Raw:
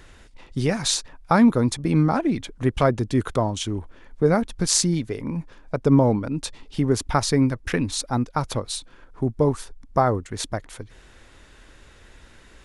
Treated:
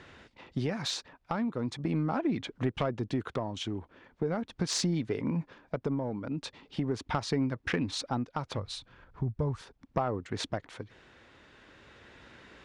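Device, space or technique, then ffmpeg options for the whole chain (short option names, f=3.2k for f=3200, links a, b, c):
AM radio: -filter_complex "[0:a]asplit=3[a][b][c];[a]afade=t=out:st=8.57:d=0.02[d];[b]asubboost=boost=7.5:cutoff=100,afade=t=in:st=8.57:d=0.02,afade=t=out:st=9.59:d=0.02[e];[c]afade=t=in:st=9.59:d=0.02[f];[d][e][f]amix=inputs=3:normalize=0,highpass=110,lowpass=4k,acompressor=threshold=-25dB:ratio=6,asoftclip=type=tanh:threshold=-17dB,tremolo=f=0.4:d=0.37"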